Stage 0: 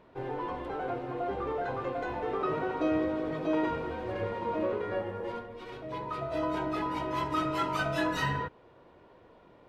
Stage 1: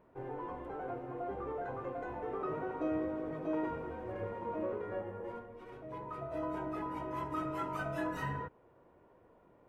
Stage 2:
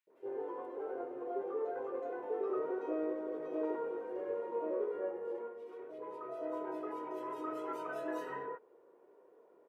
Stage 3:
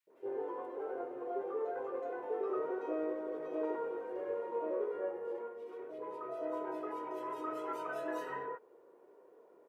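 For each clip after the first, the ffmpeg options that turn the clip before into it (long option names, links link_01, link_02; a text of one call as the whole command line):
ffmpeg -i in.wav -af "equalizer=frequency=4100:width=1:gain=-14,volume=-6dB" out.wav
ffmpeg -i in.wav -filter_complex "[0:a]highpass=frequency=420:width_type=q:width=3.6,acrossover=split=640|2500[link_01][link_02][link_03];[link_01]adelay=70[link_04];[link_02]adelay=100[link_05];[link_04][link_05][link_03]amix=inputs=3:normalize=0,volume=-4dB" out.wav
ffmpeg -i in.wav -af "adynamicequalizer=threshold=0.00398:dfrequency=250:dqfactor=0.74:tfrequency=250:tqfactor=0.74:attack=5:release=100:ratio=0.375:range=2:mode=cutabove:tftype=bell,volume=2dB" out.wav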